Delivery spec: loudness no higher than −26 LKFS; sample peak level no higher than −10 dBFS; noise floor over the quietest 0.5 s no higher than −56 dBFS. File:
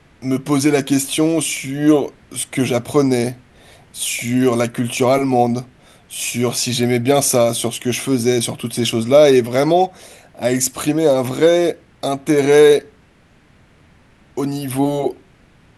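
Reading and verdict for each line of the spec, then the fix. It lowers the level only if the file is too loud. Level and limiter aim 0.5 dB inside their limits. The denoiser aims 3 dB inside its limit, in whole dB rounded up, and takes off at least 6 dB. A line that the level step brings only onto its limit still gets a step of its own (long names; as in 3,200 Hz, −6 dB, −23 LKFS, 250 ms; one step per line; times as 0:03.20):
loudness −17.0 LKFS: out of spec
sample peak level −1.5 dBFS: out of spec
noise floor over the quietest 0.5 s −51 dBFS: out of spec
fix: level −9.5 dB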